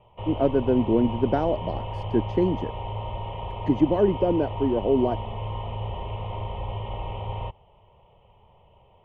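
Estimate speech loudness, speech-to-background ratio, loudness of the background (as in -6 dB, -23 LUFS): -24.5 LUFS, 9.0 dB, -33.5 LUFS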